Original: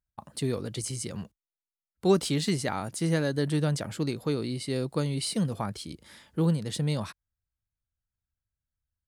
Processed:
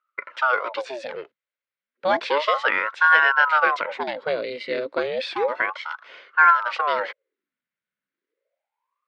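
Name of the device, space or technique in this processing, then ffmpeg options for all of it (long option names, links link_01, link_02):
voice changer toy: -af "aeval=exprs='val(0)*sin(2*PI*690*n/s+690*0.85/0.32*sin(2*PI*0.32*n/s))':channel_layout=same,highpass=510,equalizer=frequency=530:width_type=q:width=4:gain=9,equalizer=frequency=760:width_type=q:width=4:gain=-9,equalizer=frequency=1500:width_type=q:width=4:gain=7,equalizer=frequency=2100:width_type=q:width=4:gain=8,lowpass=frequency=3700:width=0.5412,lowpass=frequency=3700:width=1.3066,volume=9dB"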